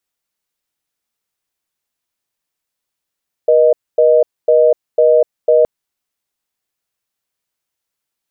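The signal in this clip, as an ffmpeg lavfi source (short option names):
-f lavfi -i "aevalsrc='0.335*(sin(2*PI*480*t)+sin(2*PI*620*t))*clip(min(mod(t,0.5),0.25-mod(t,0.5))/0.005,0,1)':d=2.17:s=44100"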